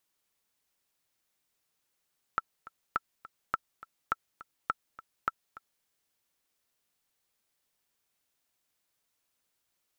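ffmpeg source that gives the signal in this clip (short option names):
-f lavfi -i "aevalsrc='pow(10,(-14-18.5*gte(mod(t,2*60/207),60/207))/20)*sin(2*PI*1330*mod(t,60/207))*exp(-6.91*mod(t,60/207)/0.03)':d=3.47:s=44100"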